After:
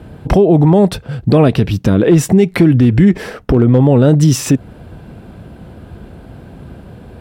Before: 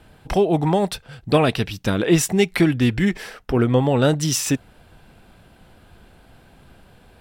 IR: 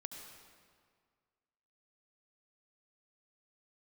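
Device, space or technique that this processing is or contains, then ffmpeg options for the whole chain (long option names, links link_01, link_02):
mastering chain: -af "highpass=58,equalizer=frequency=800:width_type=o:width=0.39:gain=-3,acompressor=threshold=-23dB:ratio=1.5,tiltshelf=frequency=970:gain=8,asoftclip=type=hard:threshold=-6dB,alimiter=level_in=12dB:limit=-1dB:release=50:level=0:latency=1,volume=-1dB"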